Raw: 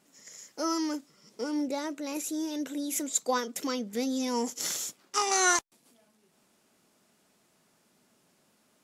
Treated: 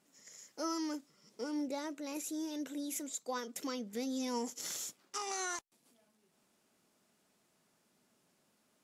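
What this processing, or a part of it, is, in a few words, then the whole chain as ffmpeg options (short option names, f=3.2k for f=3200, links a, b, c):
stacked limiters: -af "alimiter=limit=-18dB:level=0:latency=1:release=278,alimiter=limit=-21.5dB:level=0:latency=1:release=178,volume=-6.5dB"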